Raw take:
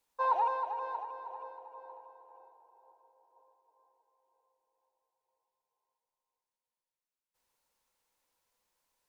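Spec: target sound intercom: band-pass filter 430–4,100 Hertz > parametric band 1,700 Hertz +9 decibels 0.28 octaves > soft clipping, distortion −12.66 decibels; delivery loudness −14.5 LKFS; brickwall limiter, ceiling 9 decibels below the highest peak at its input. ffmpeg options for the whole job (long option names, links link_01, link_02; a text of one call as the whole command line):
ffmpeg -i in.wav -af "alimiter=level_in=3.5dB:limit=-24dB:level=0:latency=1,volume=-3.5dB,highpass=430,lowpass=4100,equalizer=frequency=1700:width_type=o:width=0.28:gain=9,asoftclip=threshold=-35dB,volume=28dB" out.wav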